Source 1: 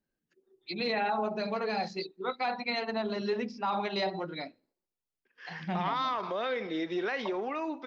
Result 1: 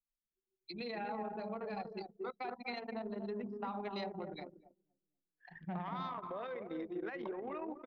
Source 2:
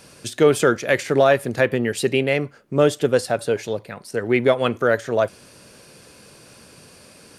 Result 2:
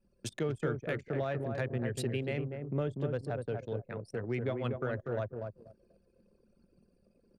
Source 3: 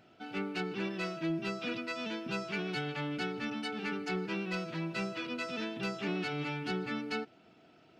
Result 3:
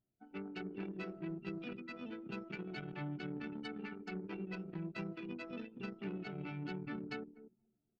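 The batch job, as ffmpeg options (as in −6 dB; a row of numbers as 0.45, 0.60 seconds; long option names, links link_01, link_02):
-filter_complex "[0:a]acrossover=split=130[link_01][link_02];[link_02]acompressor=threshold=-38dB:ratio=2.5[link_03];[link_01][link_03]amix=inputs=2:normalize=0,asplit=2[link_04][link_05];[link_05]adelay=242,lowpass=frequency=1400:poles=1,volume=-4dB,asplit=2[link_06][link_07];[link_07]adelay=242,lowpass=frequency=1400:poles=1,volume=0.37,asplit=2[link_08][link_09];[link_09]adelay=242,lowpass=frequency=1400:poles=1,volume=0.37,asplit=2[link_10][link_11];[link_11]adelay=242,lowpass=frequency=1400:poles=1,volume=0.37,asplit=2[link_12][link_13];[link_13]adelay=242,lowpass=frequency=1400:poles=1,volume=0.37[link_14];[link_04][link_06][link_08][link_10][link_12][link_14]amix=inputs=6:normalize=0,anlmdn=2.51,volume=-3.5dB"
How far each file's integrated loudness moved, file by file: −10.0, −16.0, −8.5 LU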